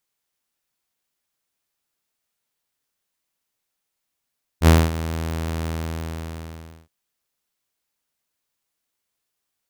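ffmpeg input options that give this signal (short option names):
-f lavfi -i "aevalsrc='0.501*(2*mod(81.3*t,1)-1)':d=2.27:s=44100,afade=t=in:d=0.062,afade=t=out:st=0.062:d=0.228:silence=0.168,afade=t=out:st=1.04:d=1.23"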